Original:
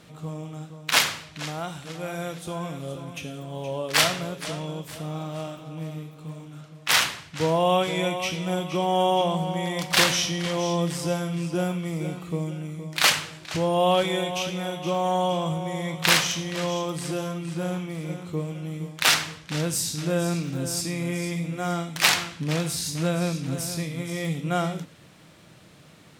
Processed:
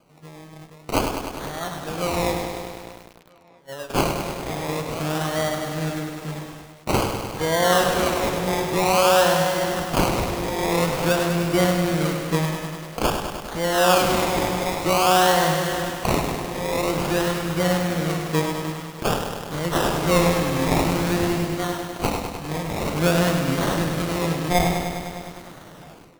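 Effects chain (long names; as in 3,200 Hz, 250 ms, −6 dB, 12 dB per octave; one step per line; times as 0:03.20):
low-shelf EQ 140 Hz −10.5 dB
0:02.46–0:03.90: noise gate −29 dBFS, range −43 dB
automatic gain control gain up to 16 dB
sample-and-hold swept by an LFO 24×, swing 60% 0.5 Hz
on a send: tape delay 638 ms, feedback 55%, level −22 dB, low-pass 4,400 Hz
on the sum: feedback echo at a low word length 101 ms, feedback 80%, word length 6 bits, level −6.5 dB
level −6 dB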